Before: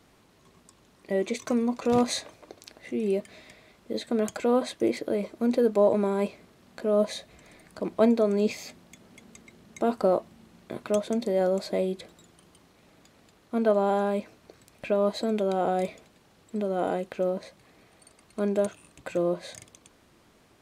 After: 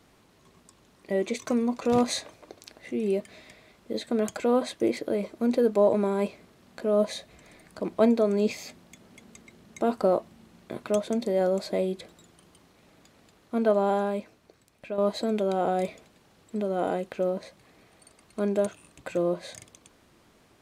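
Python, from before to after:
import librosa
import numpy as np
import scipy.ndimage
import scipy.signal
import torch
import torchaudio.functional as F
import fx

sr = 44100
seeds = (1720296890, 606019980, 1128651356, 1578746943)

y = fx.edit(x, sr, fx.fade_out_to(start_s=13.92, length_s=1.06, curve='qua', floor_db=-8.0), tone=tone)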